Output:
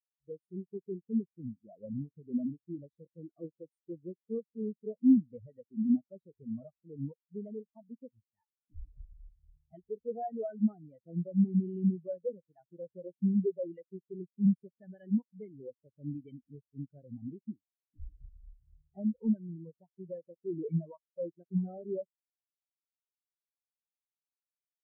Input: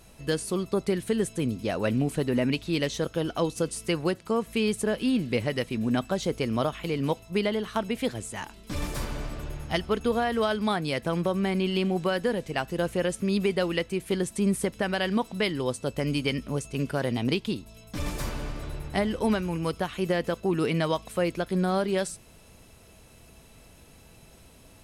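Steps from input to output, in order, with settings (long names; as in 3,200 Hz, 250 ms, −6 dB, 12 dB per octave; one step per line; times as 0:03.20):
spectral magnitudes quantised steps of 15 dB
in parallel at −5 dB: wrap-around overflow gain 21 dB
on the sum: every bin expanded away from the loudest bin 4 to 1
level −1.5 dB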